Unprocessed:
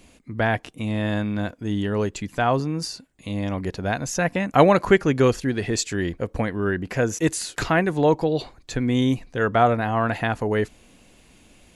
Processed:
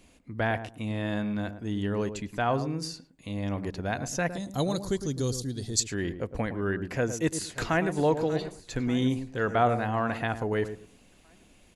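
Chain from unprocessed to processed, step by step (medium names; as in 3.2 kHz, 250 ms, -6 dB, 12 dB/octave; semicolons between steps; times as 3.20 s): 4.30–5.80 s: FFT filter 110 Hz 0 dB, 2.6 kHz -19 dB, 3.7 kHz +6 dB, 6.3 kHz +9 dB; filtered feedback delay 110 ms, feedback 21%, low-pass 860 Hz, level -9 dB; 6.81–7.96 s: echo throw 590 ms, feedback 60%, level -15 dB; trim -6 dB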